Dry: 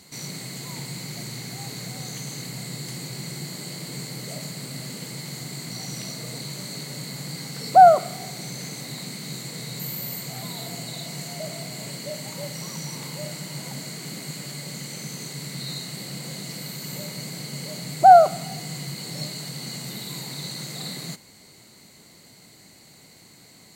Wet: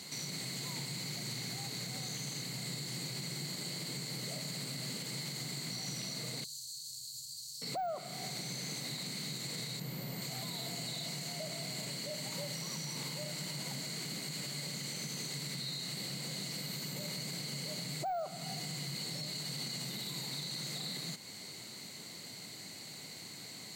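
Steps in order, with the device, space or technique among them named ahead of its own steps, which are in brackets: broadcast voice chain (high-pass 93 Hz 24 dB/octave; de-esser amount 70%; compression 3:1, threshold -39 dBFS, peak gain reduction 21 dB; peaking EQ 3.9 kHz +5.5 dB 1.8 oct; peak limiter -31 dBFS, peak gain reduction 7.5 dB); 6.44–7.62 s: inverse Chebyshev band-stop 200–2000 Hz, stop band 50 dB

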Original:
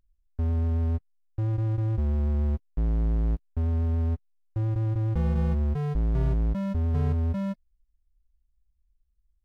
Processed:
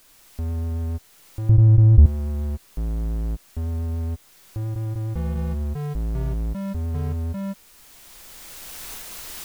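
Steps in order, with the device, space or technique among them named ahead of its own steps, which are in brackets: cheap recorder with automatic gain (white noise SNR 28 dB; recorder AGC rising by 13 dB/s); 1.49–2.06 s: tilt EQ -4.5 dB/octave; trim -1 dB

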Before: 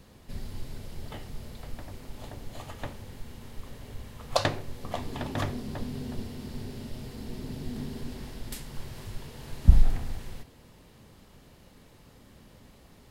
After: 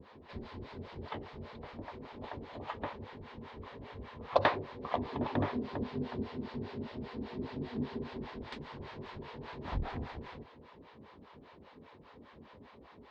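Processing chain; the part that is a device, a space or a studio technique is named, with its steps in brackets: guitar amplifier with harmonic tremolo (harmonic tremolo 5 Hz, depth 100%, crossover 550 Hz; saturation -13.5 dBFS, distortion -12 dB; cabinet simulation 100–3600 Hz, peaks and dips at 120 Hz -10 dB, 180 Hz -6 dB, 420 Hz +4 dB, 990 Hz +7 dB, 2.9 kHz -4 dB); trim +5.5 dB

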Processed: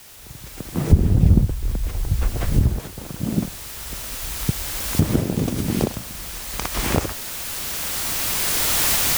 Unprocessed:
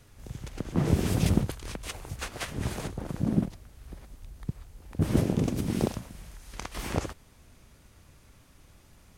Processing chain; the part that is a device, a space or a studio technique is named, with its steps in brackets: 0.91–2.79 s: tilt EQ -4.5 dB/octave; cheap recorder with automatic gain (white noise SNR 20 dB; recorder AGC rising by 7.8 dB/s); trim -4 dB

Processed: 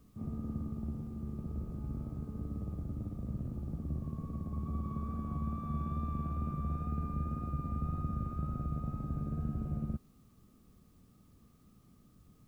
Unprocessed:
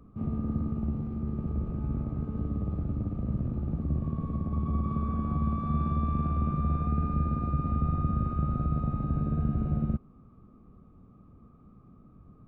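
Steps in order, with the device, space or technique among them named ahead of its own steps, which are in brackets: plain cassette with noise reduction switched in (tape noise reduction on one side only decoder only; wow and flutter 18 cents; white noise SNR 38 dB); trim -8 dB

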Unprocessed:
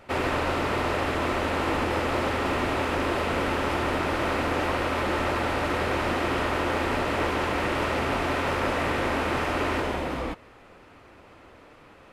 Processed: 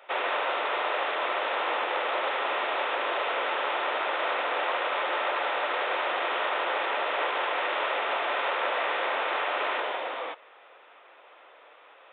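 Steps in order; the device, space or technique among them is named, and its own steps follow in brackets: musical greeting card (resampled via 8 kHz; high-pass 510 Hz 24 dB/octave; peaking EQ 3.6 kHz +5.5 dB 0.28 oct)

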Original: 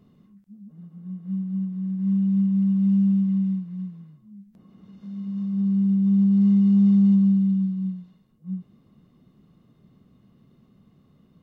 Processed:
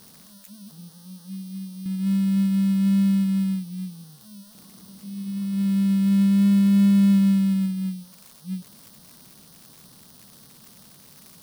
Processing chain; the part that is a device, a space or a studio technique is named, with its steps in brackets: 0.91–1.86 s: graphic EQ 125/250/500 Hz -9/-5/-6 dB; budget class-D amplifier (dead-time distortion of 0.21 ms; zero-crossing glitches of -28 dBFS)

